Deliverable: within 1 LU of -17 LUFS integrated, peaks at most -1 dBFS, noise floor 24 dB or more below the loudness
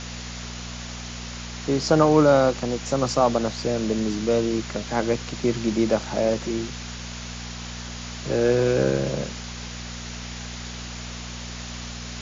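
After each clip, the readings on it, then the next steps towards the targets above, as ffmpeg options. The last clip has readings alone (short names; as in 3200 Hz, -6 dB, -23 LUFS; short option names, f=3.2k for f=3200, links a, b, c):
hum 60 Hz; harmonics up to 240 Hz; hum level -34 dBFS; noise floor -35 dBFS; noise floor target -49 dBFS; loudness -25.0 LUFS; peak -5.0 dBFS; loudness target -17.0 LUFS
-> -af "bandreject=f=60:t=h:w=4,bandreject=f=120:t=h:w=4,bandreject=f=180:t=h:w=4,bandreject=f=240:t=h:w=4"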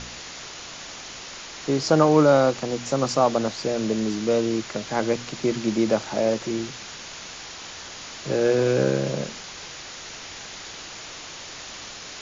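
hum none; noise floor -39 dBFS; noise floor target -47 dBFS
-> -af "afftdn=nr=8:nf=-39"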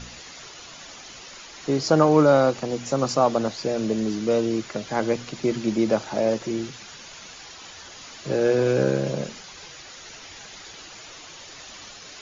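noise floor -43 dBFS; noise floor target -47 dBFS
-> -af "afftdn=nr=6:nf=-43"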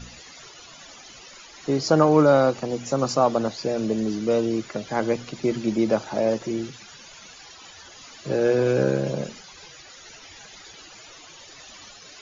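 noise floor -46 dBFS; noise floor target -47 dBFS
-> -af "afftdn=nr=6:nf=-46"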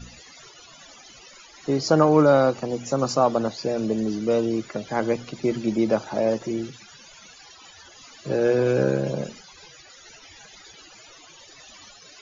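noise floor -49 dBFS; loudness -23.0 LUFS; peak -5.0 dBFS; loudness target -17.0 LUFS
-> -af "volume=6dB,alimiter=limit=-1dB:level=0:latency=1"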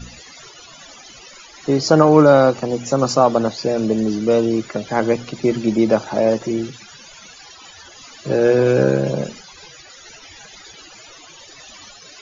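loudness -17.0 LUFS; peak -1.0 dBFS; noise floor -43 dBFS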